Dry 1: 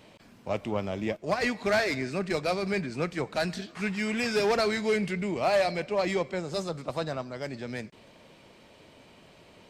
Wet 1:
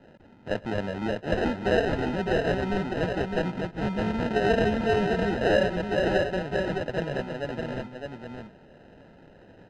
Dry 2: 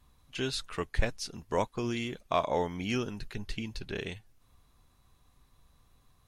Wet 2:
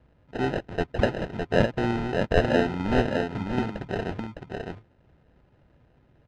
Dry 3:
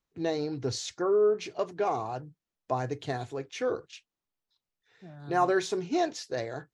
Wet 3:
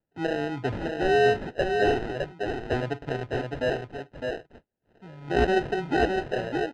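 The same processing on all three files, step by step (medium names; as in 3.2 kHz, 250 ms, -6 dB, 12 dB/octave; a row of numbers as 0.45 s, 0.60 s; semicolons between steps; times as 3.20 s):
high-pass 80 Hz 12 dB/octave; sample-and-hold 39×; low-pass 2.8 kHz 12 dB/octave; delay 609 ms -4.5 dB; normalise loudness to -27 LUFS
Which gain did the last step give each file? +2.0 dB, +7.5 dB, +3.0 dB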